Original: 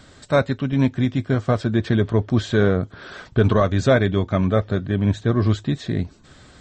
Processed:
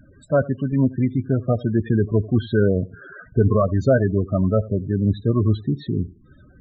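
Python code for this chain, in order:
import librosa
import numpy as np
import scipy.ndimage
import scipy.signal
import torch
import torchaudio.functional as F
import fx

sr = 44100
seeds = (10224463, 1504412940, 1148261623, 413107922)

y = fx.echo_feedback(x, sr, ms=85, feedback_pct=21, wet_db=-20.5)
y = fx.spec_topn(y, sr, count=16)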